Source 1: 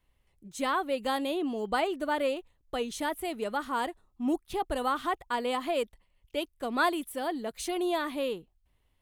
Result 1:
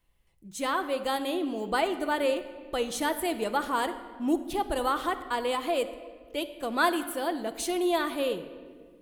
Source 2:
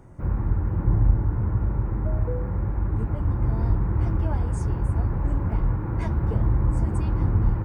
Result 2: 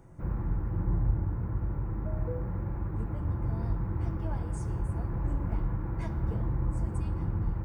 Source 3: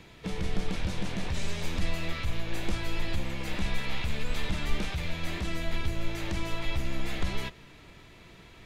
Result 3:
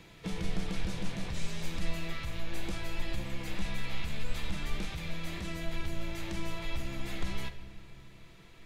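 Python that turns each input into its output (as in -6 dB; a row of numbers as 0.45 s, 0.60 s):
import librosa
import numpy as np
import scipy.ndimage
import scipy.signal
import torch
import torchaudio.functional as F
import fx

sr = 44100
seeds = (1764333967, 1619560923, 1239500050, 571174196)

y = fx.high_shelf(x, sr, hz=5700.0, db=4.5)
y = fx.rider(y, sr, range_db=10, speed_s=2.0)
y = fx.room_shoebox(y, sr, seeds[0], volume_m3=2300.0, walls='mixed', distance_m=0.74)
y = y * 10.0 ** (-30 / 20.0) / np.sqrt(np.mean(np.square(y)))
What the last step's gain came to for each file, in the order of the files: +1.0 dB, -8.5 dB, -6.0 dB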